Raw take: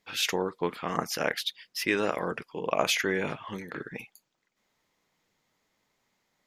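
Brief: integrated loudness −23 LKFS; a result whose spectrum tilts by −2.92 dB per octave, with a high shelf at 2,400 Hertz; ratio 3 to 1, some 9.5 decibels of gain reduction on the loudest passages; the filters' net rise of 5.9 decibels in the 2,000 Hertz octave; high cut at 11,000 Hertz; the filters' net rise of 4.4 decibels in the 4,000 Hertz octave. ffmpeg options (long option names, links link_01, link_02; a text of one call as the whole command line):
ffmpeg -i in.wav -af "lowpass=11000,equalizer=frequency=2000:width_type=o:gain=7.5,highshelf=frequency=2400:gain=-4,equalizer=frequency=4000:width_type=o:gain=6.5,acompressor=threshold=-32dB:ratio=3,volume=11.5dB" out.wav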